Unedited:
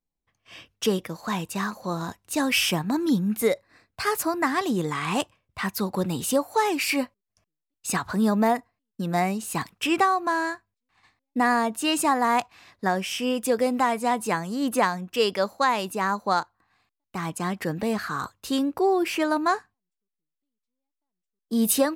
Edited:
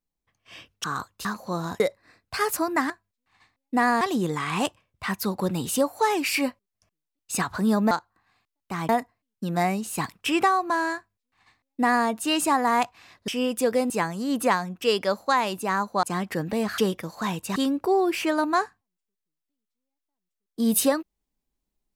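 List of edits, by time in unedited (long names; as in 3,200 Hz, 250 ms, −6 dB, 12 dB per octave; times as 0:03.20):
0:00.84–0:01.62: swap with 0:18.08–0:18.49
0:02.17–0:03.46: remove
0:10.53–0:11.64: duplicate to 0:04.56
0:12.85–0:13.14: remove
0:13.76–0:14.22: remove
0:16.35–0:17.33: move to 0:08.46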